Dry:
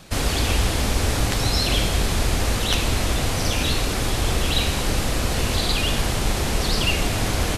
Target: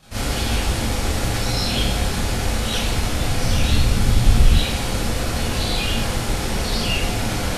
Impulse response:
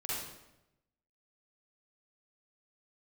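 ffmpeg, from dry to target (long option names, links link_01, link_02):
-filter_complex "[1:a]atrim=start_sample=2205,asetrate=83790,aresample=44100[link_01];[0:a][link_01]afir=irnorm=-1:irlink=0,asettb=1/sr,asplit=3[link_02][link_03][link_04];[link_02]atrim=end=2.984[link_05];[link_03]atrim=start=2.98:end=4.59,asetpts=PTS-STARTPTS,afade=type=in:duration=0.004:curve=qsin,afade=type=out:start_time=1.606:duration=0.004:curve=qsin,asubboost=boost=5.5:cutoff=250[link_06];[link_04]atrim=start=4.586[link_07];[link_05][link_06]acrossfade=duration=0.004:curve1=hsin:curve2=qsin[link_08];[link_08][link_07]acrossfade=duration=0.004:curve1=qsin:curve2=hsin,volume=2dB"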